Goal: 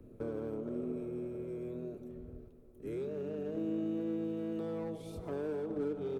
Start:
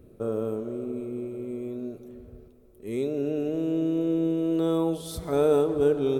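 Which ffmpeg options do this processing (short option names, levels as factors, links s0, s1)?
-filter_complex "[0:a]highshelf=f=2600:g=-8.5,acrossover=split=360|1000[s0][s1][s2];[s0]acompressor=threshold=0.00891:ratio=4[s3];[s1]acompressor=threshold=0.0158:ratio=4[s4];[s2]acompressor=threshold=0.00141:ratio=4[s5];[s3][s4][s5]amix=inputs=3:normalize=0,asplit=2[s6][s7];[s7]adelay=100,highpass=300,lowpass=3400,asoftclip=type=hard:threshold=0.0237,volume=0.158[s8];[s6][s8]amix=inputs=2:normalize=0,acrossover=split=440[s9][s10];[s10]asoftclip=type=hard:threshold=0.0119[s11];[s9][s11]amix=inputs=2:normalize=0,asplit=2[s12][s13];[s13]asetrate=29433,aresample=44100,atempo=1.49831,volume=0.501[s14];[s12][s14]amix=inputs=2:normalize=0,volume=0.708"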